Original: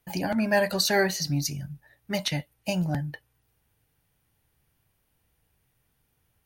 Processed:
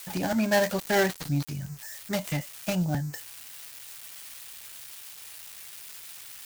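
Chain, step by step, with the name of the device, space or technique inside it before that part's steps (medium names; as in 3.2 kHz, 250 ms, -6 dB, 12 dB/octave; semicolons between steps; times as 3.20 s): budget class-D amplifier (dead-time distortion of 0.14 ms; zero-crossing glitches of -26.5 dBFS)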